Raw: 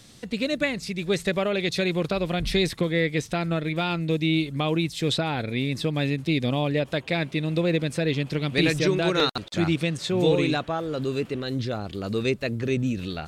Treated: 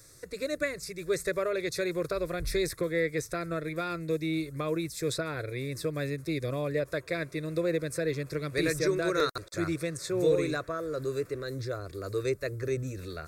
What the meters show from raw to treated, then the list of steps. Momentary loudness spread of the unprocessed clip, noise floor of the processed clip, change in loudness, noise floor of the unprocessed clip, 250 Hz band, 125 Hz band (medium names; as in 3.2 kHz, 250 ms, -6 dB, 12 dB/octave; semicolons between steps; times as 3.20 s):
6 LU, -53 dBFS, -6.0 dB, -46 dBFS, -8.5 dB, -9.0 dB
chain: treble shelf 9.2 kHz +11 dB; static phaser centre 820 Hz, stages 6; trim -2.5 dB